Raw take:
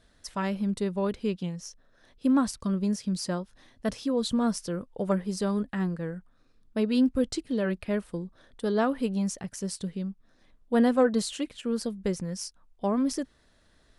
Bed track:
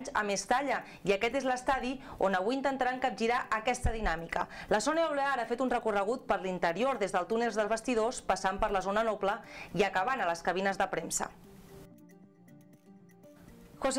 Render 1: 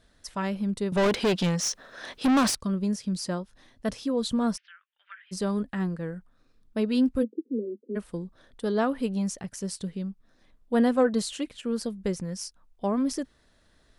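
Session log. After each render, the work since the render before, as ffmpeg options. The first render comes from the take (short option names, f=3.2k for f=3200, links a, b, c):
-filter_complex "[0:a]asettb=1/sr,asplit=3[a][b][c];[a]atrim=end=0.924[d];[b]atrim=start=0.92:end=2.55,asetpts=PTS-STARTPTS,afade=t=in:d=0.004:c=qsin,afade=t=out:st=1.626:d=0.004:c=qsin,asplit=2[e][f];[f]highpass=f=720:p=1,volume=29dB,asoftclip=type=tanh:threshold=-15.5dB[g];[e][g]amix=inputs=2:normalize=0,lowpass=f=5.3k:p=1,volume=-6dB[h];[c]atrim=start=2.546[i];[d][h]acrossfade=d=0.004:c1=hsin:c2=qsin[j];[j][i]acrossfade=d=0.004:c1=qsin:c2=hsin,asplit=3[k][l][m];[k]afade=t=out:st=4.56:d=0.02[n];[l]asuperpass=centerf=2200:order=8:qfactor=1.2,afade=t=in:st=4.56:d=0.02,afade=t=out:st=5.31:d=0.02[o];[m]afade=t=in:st=5.31:d=0.02[p];[n][o][p]amix=inputs=3:normalize=0,asplit=3[q][r][s];[q]afade=t=out:st=7.22:d=0.02[t];[r]asuperpass=centerf=330:order=20:qfactor=1.1,afade=t=in:st=7.22:d=0.02,afade=t=out:st=7.95:d=0.02[u];[s]afade=t=in:st=7.95:d=0.02[v];[t][u][v]amix=inputs=3:normalize=0"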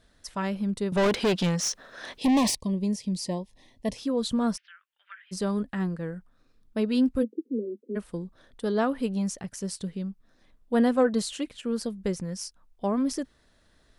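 -filter_complex "[0:a]asettb=1/sr,asplit=3[a][b][c];[a]atrim=end=2.184[d];[b]atrim=start=2.18:end=3.97,asetpts=PTS-STARTPTS,afade=t=in:d=0.004:c=qsin,afade=t=out:st=1.786:d=0.004:c=qsin,asuperstop=centerf=1400:order=8:qfactor=1.9[e];[c]atrim=start=3.966[f];[d][e]acrossfade=d=0.004:c1=hsin:c2=qsin[g];[g][f]acrossfade=d=0.004:c1=qsin:c2=hsin"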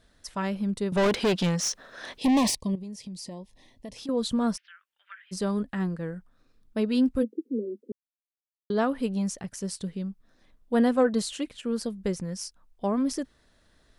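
-filter_complex "[0:a]asettb=1/sr,asplit=3[a][b][c];[a]atrim=end=2.754[d];[b]atrim=start=2.75:end=4.09,asetpts=PTS-STARTPTS,afade=t=in:d=0.004:c=qsin,afade=t=out:st=1.336:d=0.004:c=qsin,acompressor=threshold=-36dB:ratio=6:attack=3.2:release=140:knee=1:detection=peak[e];[c]atrim=start=4.086[f];[d][e]acrossfade=d=0.004:c1=hsin:c2=qsin[g];[g][f]acrossfade=d=0.004:c1=qsin:c2=hsin,asplit=3[h][i][j];[h]atrim=end=7.92,asetpts=PTS-STARTPTS,afade=t=out:st=7.916:d=0.004:c=hsin[k];[i]atrim=start=7.92:end=8.7,asetpts=PTS-STARTPTS,volume=0[l];[j]atrim=start=8.7,asetpts=PTS-STARTPTS,afade=t=in:d=0.004:c=hsin[m];[k][l][m]concat=n=3:v=0:a=1"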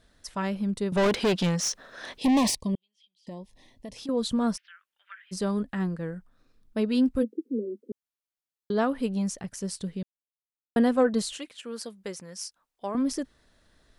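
-filter_complex "[0:a]asettb=1/sr,asplit=3[a][b][c];[a]atrim=end=2.754[d];[b]atrim=start=2.75:end=3.27,asetpts=PTS-STARTPTS,afade=t=in:d=0.004:c=qsin,afade=t=out:st=0.516:d=0.004:c=qsin,bandpass=f=3.2k:t=q:w=17[e];[c]atrim=start=3.266[f];[d][e]acrossfade=d=0.004:c1=hsin:c2=qsin[g];[g][f]acrossfade=d=0.004:c1=qsin:c2=hsin,asettb=1/sr,asplit=3[h][i][j];[h]atrim=end=11.384[k];[i]atrim=start=11.38:end=12.95,asetpts=PTS-STARTPTS,afade=t=in:d=0.004:c=qsin,afade=t=out:st=1.566:d=0.004:c=qsin,highpass=f=800:p=1[l];[j]atrim=start=12.946[m];[k][l]acrossfade=d=0.004:c1=hsin:c2=qsin[n];[n][m]acrossfade=d=0.004:c1=qsin:c2=hsin,asplit=3[o][p][q];[o]atrim=end=10.03,asetpts=PTS-STARTPTS,afade=t=out:st=10.026:d=0.004:c=hsin[r];[p]atrim=start=10.03:end=10.76,asetpts=PTS-STARTPTS,volume=0[s];[q]atrim=start=10.76,asetpts=PTS-STARTPTS,afade=t=in:d=0.004:c=hsin[t];[r][s][t]concat=n=3:v=0:a=1"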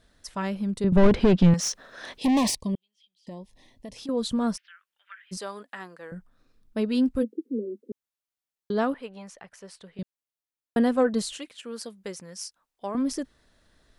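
-filter_complex "[0:a]asettb=1/sr,asplit=3[a][b][c];[a]atrim=end=0.844[d];[b]atrim=start=0.84:end=1.54,asetpts=PTS-STARTPTS,afade=t=in:d=0.004:c=qsin,afade=t=out:st=0.696:d=0.004:c=qsin,aemphasis=mode=reproduction:type=riaa[e];[c]atrim=start=1.536[f];[d][e]acrossfade=d=0.004:c1=hsin:c2=qsin[g];[g][f]acrossfade=d=0.004:c1=qsin:c2=hsin,asettb=1/sr,asplit=3[h][i][j];[h]atrim=end=5.374[k];[i]atrim=start=5.37:end=6.12,asetpts=PTS-STARTPTS,afade=t=in:d=0.004:c=qsin,afade=t=out:st=0.746:d=0.004:c=qsin,highpass=640[l];[j]atrim=start=6.116[m];[k][l]acrossfade=d=0.004:c1=hsin:c2=qsin[n];[n][m]acrossfade=d=0.004:c1=qsin:c2=hsin,asettb=1/sr,asplit=3[o][p][q];[o]atrim=end=8.944[r];[p]atrim=start=8.94:end=9.99,asetpts=PTS-STARTPTS,afade=t=in:d=0.004:c=qsin,afade=t=out:st=1.046:d=0.004:c=qsin,acrossover=split=510 3200:gain=0.126 1 0.2[s][t][u];[s][t][u]amix=inputs=3:normalize=0[v];[q]atrim=start=9.986[w];[r][v]acrossfade=d=0.004:c1=hsin:c2=qsin[x];[x][w]acrossfade=d=0.004:c1=qsin:c2=hsin"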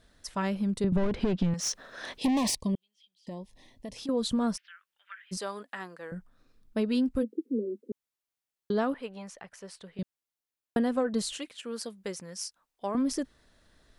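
-af "acompressor=threshold=-23dB:ratio=8"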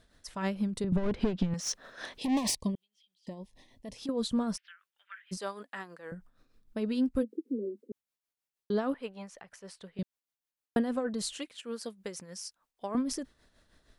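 -af "tremolo=f=6.4:d=0.56"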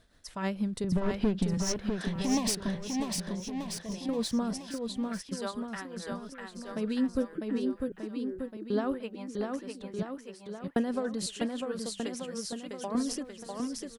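-af "aecho=1:1:650|1235|1762|2235|2662:0.631|0.398|0.251|0.158|0.1"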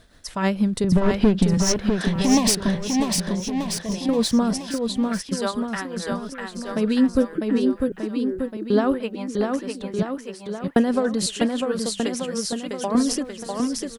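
-af "volume=10.5dB"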